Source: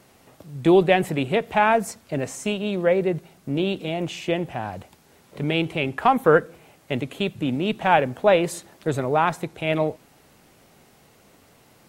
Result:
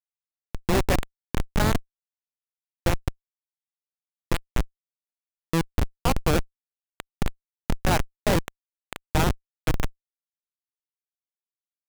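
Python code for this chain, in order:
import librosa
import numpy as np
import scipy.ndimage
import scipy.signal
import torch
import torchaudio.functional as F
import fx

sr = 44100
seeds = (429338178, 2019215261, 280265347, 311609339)

y = fx.rattle_buzz(x, sr, strikes_db=-33.0, level_db=-12.0)
y = fx.highpass(y, sr, hz=530.0, slope=6)
y = fx.schmitt(y, sr, flips_db=-13.5)
y = y * 10.0 ** (6.0 / 20.0)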